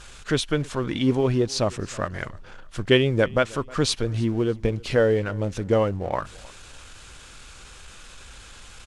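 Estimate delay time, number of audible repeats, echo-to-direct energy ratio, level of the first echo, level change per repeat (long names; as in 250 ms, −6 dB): 313 ms, 2, −23.0 dB, −23.5 dB, −10.5 dB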